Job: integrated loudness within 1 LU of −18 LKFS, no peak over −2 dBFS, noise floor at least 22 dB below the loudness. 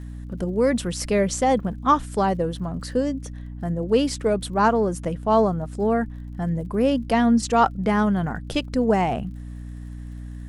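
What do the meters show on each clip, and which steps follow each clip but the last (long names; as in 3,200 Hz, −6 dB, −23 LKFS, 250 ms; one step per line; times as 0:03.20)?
crackle rate 50 per second; mains hum 60 Hz; hum harmonics up to 300 Hz; level of the hum −33 dBFS; integrated loudness −22.5 LKFS; sample peak −6.0 dBFS; target loudness −18.0 LKFS
→ click removal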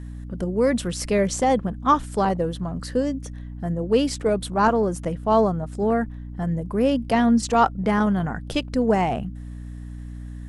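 crackle rate 0.095 per second; mains hum 60 Hz; hum harmonics up to 300 Hz; level of the hum −33 dBFS
→ hum removal 60 Hz, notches 5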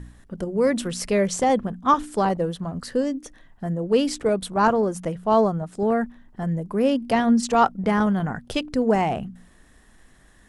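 mains hum none found; integrated loudness −23.0 LKFS; sample peak −6.0 dBFS; target loudness −18.0 LKFS
→ level +5 dB
brickwall limiter −2 dBFS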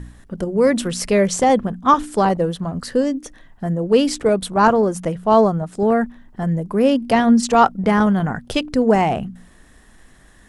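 integrated loudness −18.0 LKFS; sample peak −2.0 dBFS; background noise floor −49 dBFS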